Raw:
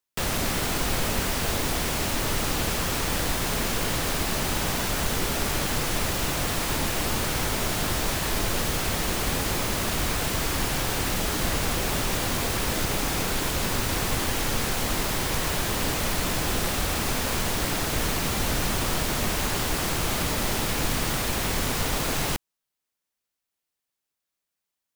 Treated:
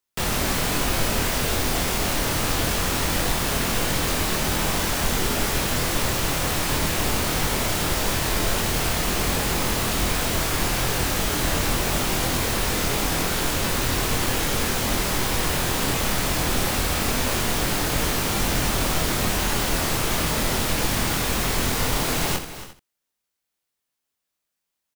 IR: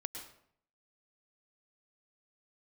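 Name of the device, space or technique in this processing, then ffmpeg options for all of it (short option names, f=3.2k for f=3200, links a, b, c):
slapback doubling: -filter_complex "[0:a]asplit=3[a][b][c];[b]adelay=24,volume=-3.5dB[d];[c]adelay=85,volume=-10dB[e];[a][d][e]amix=inputs=3:normalize=0,aecho=1:1:276|346:0.2|0.1,volume=1dB"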